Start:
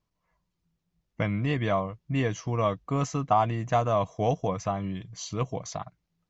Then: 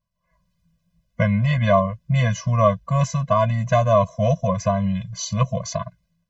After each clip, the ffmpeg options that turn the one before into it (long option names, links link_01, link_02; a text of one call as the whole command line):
ffmpeg -i in.wav -af "dynaudnorm=framelen=120:gausssize=5:maxgain=11.5dB,afftfilt=real='re*eq(mod(floor(b*sr/1024/240),2),0)':imag='im*eq(mod(floor(b*sr/1024/240),2),0)':win_size=1024:overlap=0.75" out.wav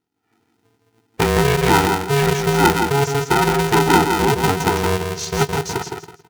ffmpeg -i in.wav -af "aecho=1:1:164|328|492:0.562|0.141|0.0351,aeval=exprs='val(0)*sgn(sin(2*PI*280*n/s))':channel_layout=same,volume=1.5dB" out.wav